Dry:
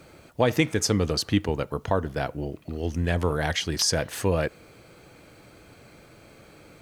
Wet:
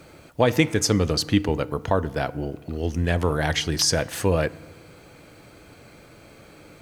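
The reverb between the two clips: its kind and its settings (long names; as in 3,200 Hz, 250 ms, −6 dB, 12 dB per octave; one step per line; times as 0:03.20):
feedback delay network reverb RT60 1.4 s, low-frequency decay 1.35×, high-frequency decay 0.5×, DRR 18.5 dB
level +2.5 dB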